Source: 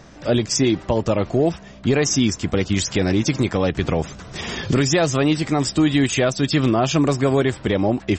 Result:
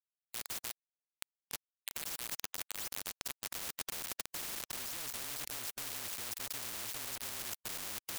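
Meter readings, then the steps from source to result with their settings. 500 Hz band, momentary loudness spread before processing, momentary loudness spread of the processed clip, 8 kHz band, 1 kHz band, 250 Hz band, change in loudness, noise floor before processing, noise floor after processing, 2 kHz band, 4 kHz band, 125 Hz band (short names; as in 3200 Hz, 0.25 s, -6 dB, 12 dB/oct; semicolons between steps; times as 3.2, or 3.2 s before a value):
-35.0 dB, 5 LU, 6 LU, -13.5 dB, -22.5 dB, -39.5 dB, -20.0 dB, -42 dBFS, under -85 dBFS, -19.0 dB, -16.5 dB, -38.0 dB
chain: frequency shift -28 Hz; reverse; compressor 12:1, threshold -26 dBFS, peak gain reduction 14.5 dB; reverse; high-pass sweep 2900 Hz -> 110 Hz, 1.82–5.71; bit-crush 5-bit; spectral compressor 10:1; gain -3.5 dB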